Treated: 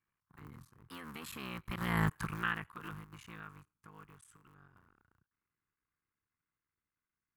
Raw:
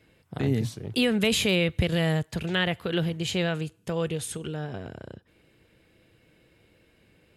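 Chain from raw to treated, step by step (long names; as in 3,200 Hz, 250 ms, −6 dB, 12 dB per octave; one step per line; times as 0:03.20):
sub-harmonics by changed cycles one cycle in 3, muted
source passing by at 0:02.09, 21 m/s, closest 2.6 metres
drawn EQ curve 150 Hz 0 dB, 370 Hz −5 dB, 610 Hz −13 dB, 1,100 Hz +14 dB, 3,500 Hz −7 dB, 6,400 Hz −3 dB, 13,000 Hz +6 dB
level −1.5 dB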